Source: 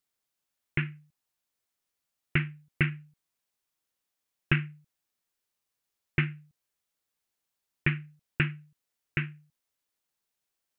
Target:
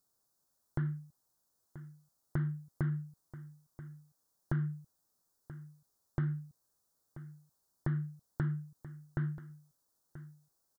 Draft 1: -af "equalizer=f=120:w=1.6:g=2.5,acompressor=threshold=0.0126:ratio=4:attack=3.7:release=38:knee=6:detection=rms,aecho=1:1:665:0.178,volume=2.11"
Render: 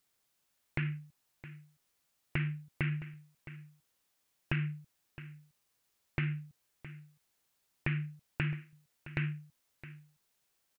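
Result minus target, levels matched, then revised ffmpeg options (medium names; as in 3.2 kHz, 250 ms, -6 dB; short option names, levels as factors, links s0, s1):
2 kHz band +10.5 dB; echo 318 ms early
-af "asuperstop=centerf=2500:order=4:qfactor=0.74,equalizer=f=120:w=1.6:g=2.5,acompressor=threshold=0.0126:ratio=4:attack=3.7:release=38:knee=6:detection=rms,aecho=1:1:983:0.178,volume=2.11"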